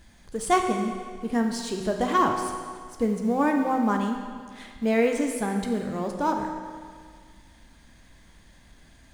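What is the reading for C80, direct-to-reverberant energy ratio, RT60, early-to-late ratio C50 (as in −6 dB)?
6.5 dB, 3.5 dB, 1.9 s, 5.0 dB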